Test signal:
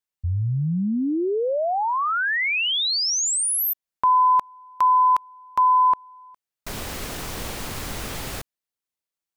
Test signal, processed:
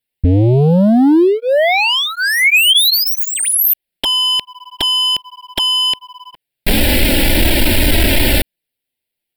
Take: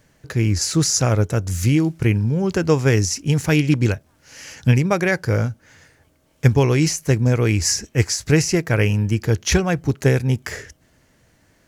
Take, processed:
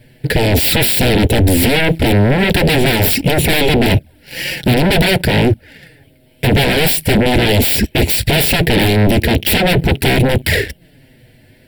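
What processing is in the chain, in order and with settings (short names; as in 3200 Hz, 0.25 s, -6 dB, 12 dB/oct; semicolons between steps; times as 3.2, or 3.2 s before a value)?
envelope flanger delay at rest 8.4 ms, full sweep at -16.5 dBFS; in parallel at -8.5 dB: hard clip -19 dBFS; on the sum: sample leveller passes 2; sine folder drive 16 dB, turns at -3 dBFS; fixed phaser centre 2800 Hz, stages 4; gain -3 dB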